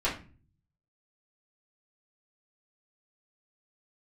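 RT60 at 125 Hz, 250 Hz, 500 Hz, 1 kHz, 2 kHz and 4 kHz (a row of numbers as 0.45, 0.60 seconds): 0.95, 0.65, 0.40, 0.35, 0.35, 0.25 seconds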